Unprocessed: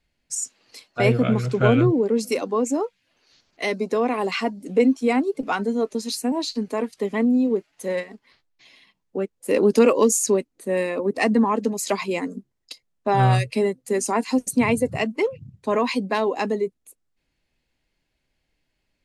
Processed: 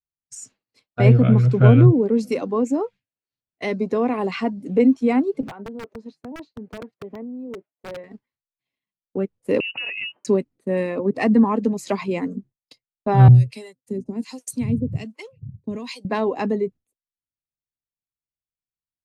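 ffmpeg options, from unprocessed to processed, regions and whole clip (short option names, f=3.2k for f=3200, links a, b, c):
-filter_complex "[0:a]asettb=1/sr,asplit=3[a][b][c];[a]atrim=end=5.484[d];[b]atrim=start=5.48:end=8.04,asetpts=PTS-STARTPTS,afade=t=in:d=0.004:c=qsin,afade=t=out:st=2.556:d=0.004:c=qsin,acompressor=threshold=-28dB:ratio=16:attack=3.2:release=140:knee=1:detection=peak,bandpass=f=550:t=q:w=0.89,aeval=exprs='(mod(23.7*val(0)+1,2)-1)/23.7':c=same[e];[c]atrim=start=8.036[f];[d][e]acrossfade=d=0.004:c1=hsin:c2=qsin[g];[g][f]acrossfade=d=0.004:c1=qsin:c2=hsin,asettb=1/sr,asplit=3[h][i][j];[h]atrim=end=9.604[k];[i]atrim=start=9.6:end=10.25,asetpts=PTS-STARTPTS,afade=t=in:d=0.004:c=qsin,afade=t=out:st=0.646:d=0.004:c=qsin,lowpass=f=2.6k:t=q:w=0.5098,lowpass=f=2.6k:t=q:w=0.6013,lowpass=f=2.6k:t=q:w=0.9,lowpass=f=2.6k:t=q:w=2.563,afreqshift=-3100,acompressor=threshold=-22dB:ratio=6:attack=3.2:release=140:knee=1:detection=peak,highpass=110[l];[j]atrim=start=10.246[m];[k][l]acrossfade=d=0.004:c1=hsin:c2=qsin[n];[n][m]acrossfade=d=0.004:c1=qsin:c2=hsin,asettb=1/sr,asplit=3[o][p][q];[o]atrim=end=13.284[r];[p]atrim=start=13.28:end=16.05,asetpts=PTS-STARTPTS,afade=t=in:d=0.004:c=qsin,afade=t=out:st=2.766:d=0.004:c=qsin,highshelf=f=4k:g=9.5,acrossover=split=360|3000[s][t][u];[t]acompressor=threshold=-41dB:ratio=2.5:attack=3.2:release=140:knee=2.83:detection=peak[v];[s][v][u]amix=inputs=3:normalize=0,acrossover=split=580[w][x];[w]aeval=exprs='val(0)*(1-1/2+1/2*cos(2*PI*1.3*n/s))':c=same[y];[x]aeval=exprs='val(0)*(1-1/2-1/2*cos(2*PI*1.3*n/s))':c=same[z];[y][z]amix=inputs=2:normalize=0[aa];[q]atrim=start=16.046[ab];[r][aa]acrossfade=d=0.004:c1=hsin:c2=qsin[ac];[ac][ab]acrossfade=d=0.004:c1=qsin:c2=hsin,equalizer=f=110:w=0.7:g=12,agate=range=-33dB:threshold=-33dB:ratio=3:detection=peak,lowpass=f=2.7k:p=1,volume=-1.5dB"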